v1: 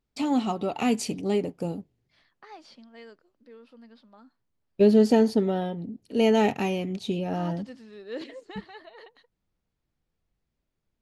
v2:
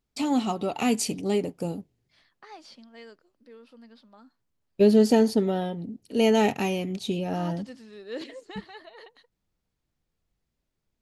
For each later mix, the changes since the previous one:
master: add high shelf 5600 Hz +8.5 dB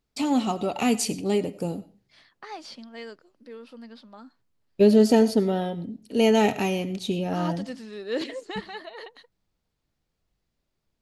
second voice +7.0 dB; reverb: on, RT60 0.30 s

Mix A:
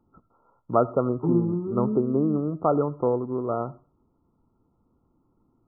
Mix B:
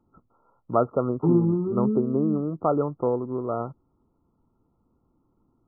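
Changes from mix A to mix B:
second voice +5.0 dB; reverb: off

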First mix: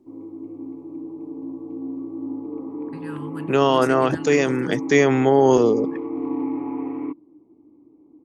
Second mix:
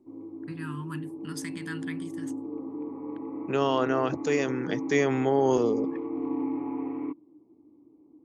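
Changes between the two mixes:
first voice: entry -2.45 s; second voice -8.0 dB; background -4.5 dB

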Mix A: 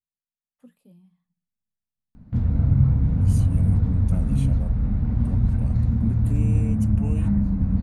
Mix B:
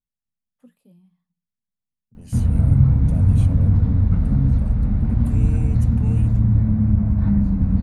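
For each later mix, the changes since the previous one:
second voice: entry -1.00 s; background +3.5 dB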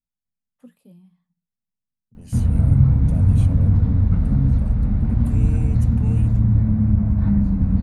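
first voice +4.5 dB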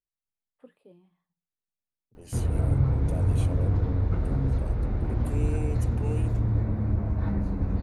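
first voice: add running mean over 7 samples; master: add resonant low shelf 280 Hz -7.5 dB, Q 3

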